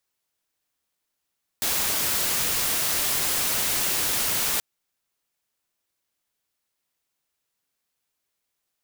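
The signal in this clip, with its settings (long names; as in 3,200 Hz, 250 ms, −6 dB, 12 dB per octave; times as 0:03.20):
noise white, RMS −24.5 dBFS 2.98 s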